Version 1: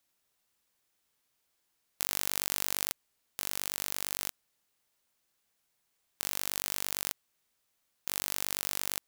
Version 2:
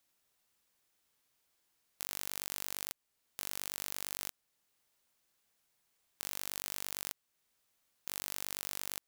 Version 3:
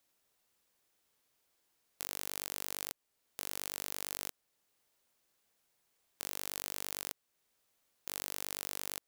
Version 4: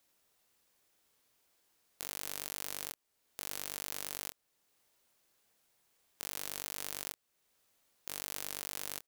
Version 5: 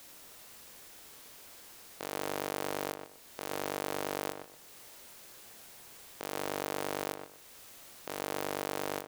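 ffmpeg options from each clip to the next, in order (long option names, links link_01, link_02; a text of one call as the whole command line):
ffmpeg -i in.wav -af "alimiter=limit=-12dB:level=0:latency=1:release=469" out.wav
ffmpeg -i in.wav -af "equalizer=frequency=470:width=0.92:gain=4" out.wav
ffmpeg -i in.wav -filter_complex "[0:a]alimiter=limit=-15.5dB:level=0:latency=1:release=469,asplit=2[link_01][link_02];[link_02]adelay=27,volume=-11dB[link_03];[link_01][link_03]amix=inputs=2:normalize=0,volume=3dB" out.wav
ffmpeg -i in.wav -filter_complex "[0:a]aeval=exprs='0.251*sin(PI/2*6.31*val(0)/0.251)':channel_layout=same,asplit=2[link_01][link_02];[link_02]adelay=123,lowpass=frequency=2000:poles=1,volume=-6dB,asplit=2[link_03][link_04];[link_04]adelay=123,lowpass=frequency=2000:poles=1,volume=0.25,asplit=2[link_05][link_06];[link_06]adelay=123,lowpass=frequency=2000:poles=1,volume=0.25[link_07];[link_01][link_03][link_05][link_07]amix=inputs=4:normalize=0,volume=1.5dB" out.wav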